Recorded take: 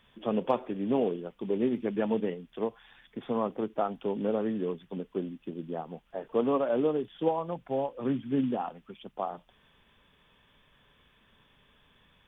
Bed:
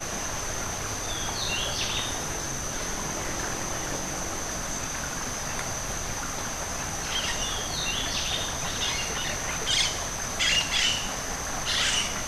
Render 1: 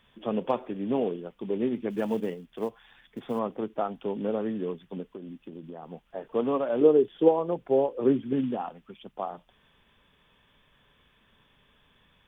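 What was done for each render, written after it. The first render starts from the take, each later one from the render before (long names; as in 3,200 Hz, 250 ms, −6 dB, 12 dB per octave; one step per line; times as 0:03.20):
0:01.90–0:03.39: floating-point word with a short mantissa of 4 bits
0:05.15–0:05.83: downward compressor 12 to 1, threshold −36 dBFS
0:06.81–0:08.33: parametric band 400 Hz +12 dB 0.88 octaves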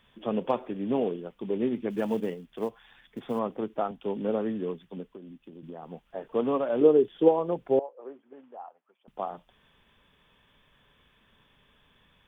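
0:03.91–0:05.63: multiband upward and downward expander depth 40%
0:07.79–0:09.08: four-pole ladder band-pass 880 Hz, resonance 30%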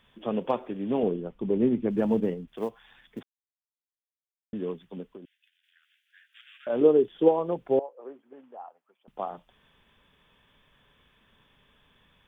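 0:01.03–0:02.48: spectral tilt −2.5 dB per octave
0:03.23–0:04.53: silence
0:05.25–0:06.67: Butterworth high-pass 1,500 Hz 96 dB per octave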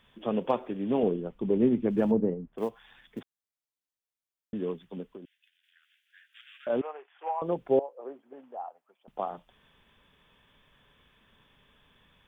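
0:02.11–0:02.58: low-pass filter 1,000 Hz
0:06.81–0:07.42: elliptic band-pass filter 760–2,500 Hz, stop band 80 dB
0:07.96–0:09.20: parametric band 690 Hz +5.5 dB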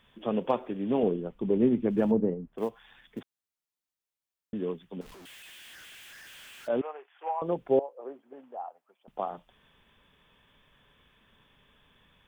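0:05.01–0:06.68: sign of each sample alone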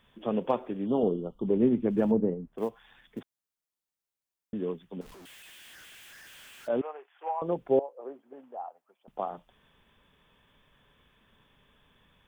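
0:00.87–0:01.47: gain on a spectral selection 1,400–2,800 Hz −26 dB
parametric band 2,800 Hz −2.5 dB 1.9 octaves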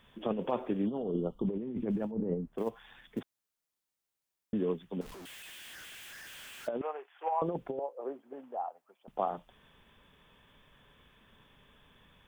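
brickwall limiter −20 dBFS, peak gain reduction 7 dB
compressor whose output falls as the input rises −31 dBFS, ratio −0.5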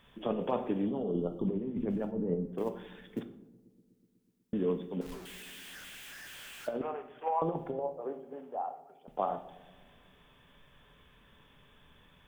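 feedback echo with a low-pass in the loop 123 ms, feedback 81%, low-pass 950 Hz, level −21 dB
rectangular room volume 150 cubic metres, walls mixed, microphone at 0.34 metres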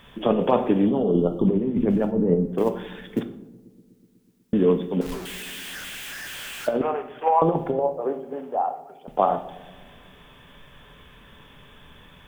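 level +12 dB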